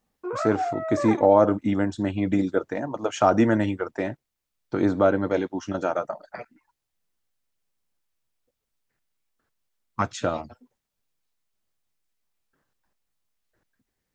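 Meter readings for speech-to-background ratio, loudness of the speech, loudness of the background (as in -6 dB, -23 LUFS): 6.0 dB, -24.5 LUFS, -30.5 LUFS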